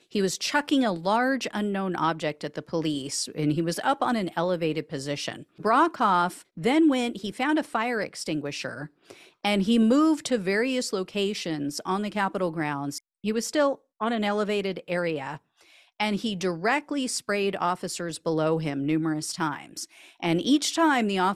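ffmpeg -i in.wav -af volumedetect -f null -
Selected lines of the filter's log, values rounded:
mean_volume: -26.4 dB
max_volume: -9.8 dB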